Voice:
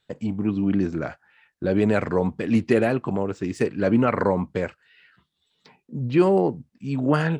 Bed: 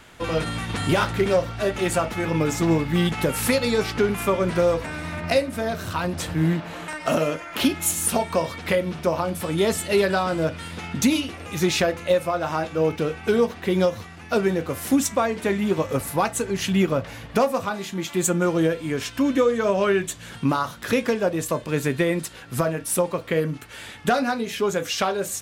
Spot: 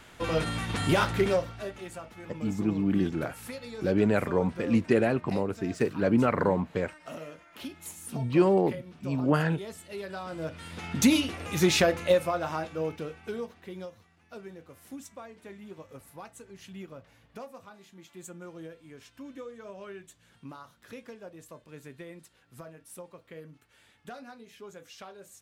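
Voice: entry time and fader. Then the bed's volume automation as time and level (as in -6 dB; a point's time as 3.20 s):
2.20 s, -4.0 dB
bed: 1.25 s -3.5 dB
1.90 s -19.5 dB
9.96 s -19.5 dB
11.07 s -1.5 dB
12.02 s -1.5 dB
14.03 s -23 dB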